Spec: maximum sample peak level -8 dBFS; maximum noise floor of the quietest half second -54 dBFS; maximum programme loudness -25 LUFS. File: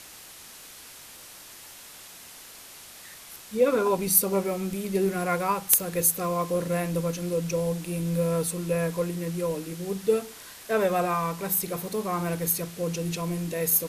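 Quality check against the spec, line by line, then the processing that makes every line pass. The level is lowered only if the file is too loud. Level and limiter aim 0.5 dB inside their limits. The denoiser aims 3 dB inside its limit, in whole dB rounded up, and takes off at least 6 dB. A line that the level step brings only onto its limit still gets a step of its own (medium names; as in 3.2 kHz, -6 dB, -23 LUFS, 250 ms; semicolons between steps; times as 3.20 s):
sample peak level -4.5 dBFS: fail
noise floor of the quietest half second -46 dBFS: fail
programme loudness -26.5 LUFS: pass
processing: noise reduction 11 dB, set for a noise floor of -46 dBFS; peak limiter -8.5 dBFS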